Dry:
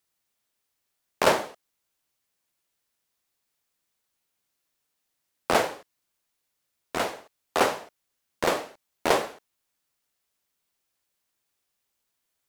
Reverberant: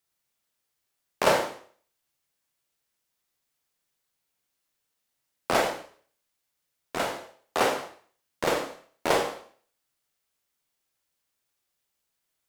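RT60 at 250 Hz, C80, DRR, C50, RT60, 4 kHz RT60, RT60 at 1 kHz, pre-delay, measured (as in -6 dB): 0.45 s, 11.5 dB, 3.0 dB, 7.5 dB, 0.45 s, 0.45 s, 0.50 s, 29 ms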